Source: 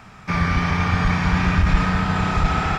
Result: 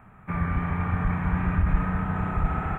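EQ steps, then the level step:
Butterworth band-reject 5,000 Hz, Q 0.52
low-shelf EQ 190 Hz +3.5 dB
parametric band 4,700 Hz +10 dB 0.33 octaves
−8.0 dB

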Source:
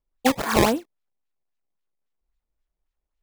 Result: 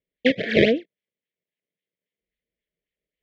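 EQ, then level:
elliptic band-stop filter 630–1,700 Hz, stop band 40 dB
loudspeaker in its box 110–3,700 Hz, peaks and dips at 180 Hz +7 dB, 450 Hz +8 dB, 1,100 Hz +7 dB, 2,100 Hz +8 dB, 3,200 Hz +7 dB
0.0 dB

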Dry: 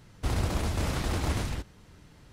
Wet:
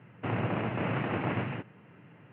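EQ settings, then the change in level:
Chebyshev band-pass filter 110–2,800 Hz, order 5
+2.5 dB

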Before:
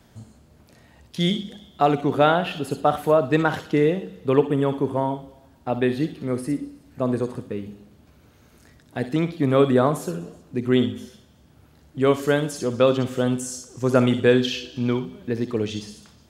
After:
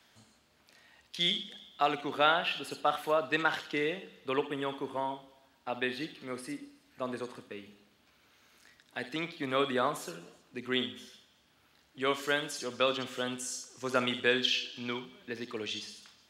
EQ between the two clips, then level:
bass and treble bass 0 dB, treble +8 dB
three-way crossover with the lows and the highs turned down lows −18 dB, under 260 Hz, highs −18 dB, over 3,800 Hz
guitar amp tone stack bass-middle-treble 5-5-5
+8.0 dB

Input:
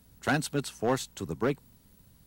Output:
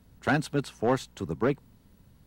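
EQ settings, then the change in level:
high-shelf EQ 4,600 Hz −12 dB
+2.5 dB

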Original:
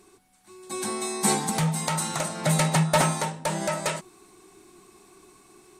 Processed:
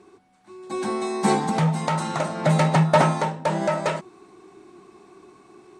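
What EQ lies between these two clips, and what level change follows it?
high-pass filter 160 Hz 6 dB per octave
low-pass filter 6,500 Hz 12 dB per octave
high-shelf EQ 2,100 Hz −12 dB
+7.0 dB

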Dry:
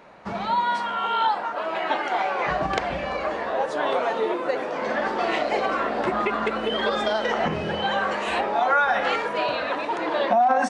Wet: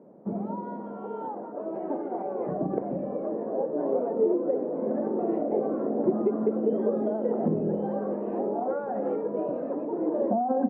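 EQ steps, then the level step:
flat-topped band-pass 290 Hz, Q 0.8
high-frequency loss of the air 220 metres
parametric band 250 Hz +7.5 dB 2.9 octaves
−2.5 dB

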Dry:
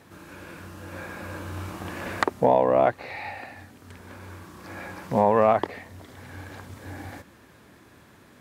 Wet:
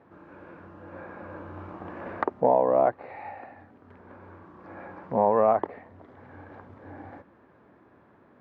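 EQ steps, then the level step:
low-pass filter 1,100 Hz 12 dB per octave
low-shelf EQ 180 Hz −11.5 dB
0.0 dB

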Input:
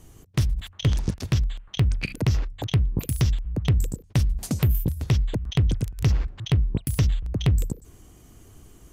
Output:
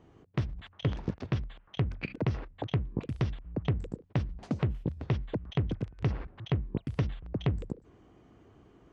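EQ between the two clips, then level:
high-pass filter 350 Hz 6 dB per octave
head-to-tape spacing loss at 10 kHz 41 dB
+2.0 dB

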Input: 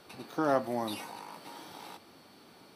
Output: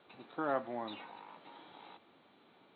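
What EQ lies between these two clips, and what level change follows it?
high-pass filter 160 Hz 6 dB per octave
Chebyshev low-pass filter 4,000 Hz, order 8
dynamic equaliser 1,500 Hz, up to +4 dB, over −49 dBFS, Q 1.8
−6.5 dB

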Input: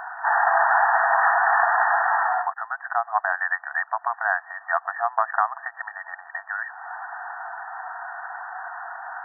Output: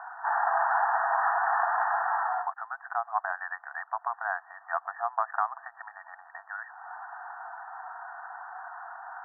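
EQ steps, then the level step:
high-pass filter 630 Hz 24 dB per octave
low-pass filter 1,500 Hz 24 dB per octave
−5.5 dB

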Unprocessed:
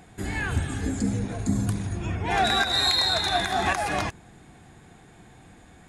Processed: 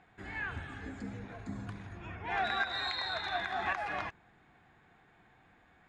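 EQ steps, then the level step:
low-pass filter 1,700 Hz 12 dB per octave
tilt shelving filter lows −9 dB, about 910 Hz
−8.5 dB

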